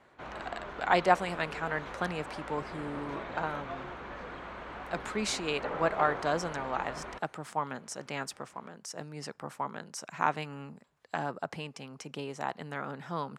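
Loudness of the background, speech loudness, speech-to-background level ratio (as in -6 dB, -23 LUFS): -41.5 LUFS, -34.5 LUFS, 7.0 dB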